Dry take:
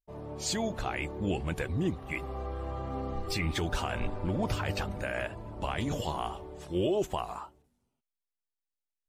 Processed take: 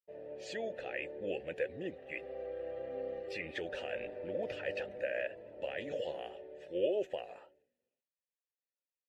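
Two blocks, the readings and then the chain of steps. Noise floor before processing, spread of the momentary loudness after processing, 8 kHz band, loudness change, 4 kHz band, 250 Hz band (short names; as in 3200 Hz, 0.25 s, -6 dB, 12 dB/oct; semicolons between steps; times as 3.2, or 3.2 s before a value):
under -85 dBFS, 8 LU, under -20 dB, -6.0 dB, -10.5 dB, -12.5 dB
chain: vowel filter e; gain +6.5 dB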